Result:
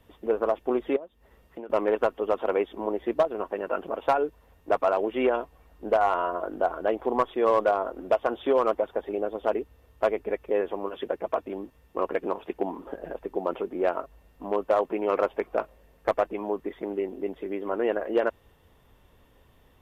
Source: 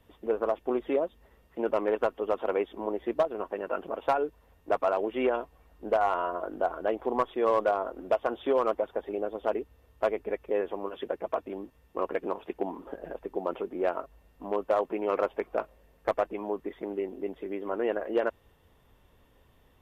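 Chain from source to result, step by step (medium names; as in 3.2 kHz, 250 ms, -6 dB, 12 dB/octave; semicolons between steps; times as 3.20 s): 0.96–1.70 s: compression 8:1, threshold -40 dBFS, peak gain reduction 17 dB; trim +3 dB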